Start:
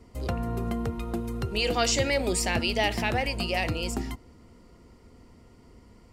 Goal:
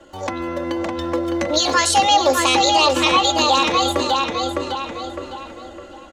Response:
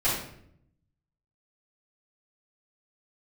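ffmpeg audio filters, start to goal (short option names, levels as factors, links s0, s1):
-filter_complex "[0:a]asetrate=64194,aresample=44100,atempo=0.686977,aecho=1:1:3.6:0.98,dynaudnorm=f=380:g=7:m=3.76,acrossover=split=300 7900:gain=0.2 1 0.1[s0][s1][s2];[s0][s1][s2]amix=inputs=3:normalize=0,asplit=2[s3][s4];[s4]adelay=608,lowpass=f=4000:p=1,volume=0.668,asplit=2[s5][s6];[s6]adelay=608,lowpass=f=4000:p=1,volume=0.34,asplit=2[s7][s8];[s8]adelay=608,lowpass=f=4000:p=1,volume=0.34,asplit=2[s9][s10];[s10]adelay=608,lowpass=f=4000:p=1,volume=0.34[s11];[s3][s5][s7][s9][s11]amix=inputs=5:normalize=0,acompressor=threshold=0.0251:ratio=1.5,volume=2.51"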